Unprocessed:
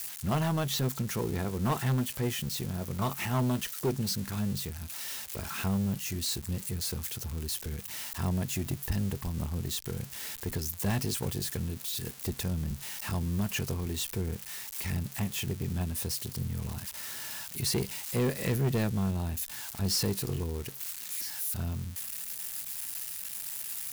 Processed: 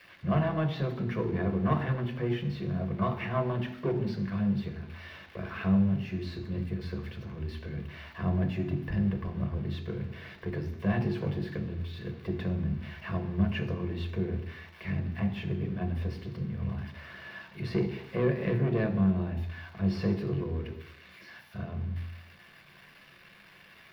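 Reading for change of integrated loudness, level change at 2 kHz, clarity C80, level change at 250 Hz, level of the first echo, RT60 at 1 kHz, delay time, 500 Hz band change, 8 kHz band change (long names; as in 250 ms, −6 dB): +0.5 dB, +0.5 dB, 13.0 dB, +3.5 dB, no echo audible, 0.80 s, no echo audible, +3.0 dB, below −30 dB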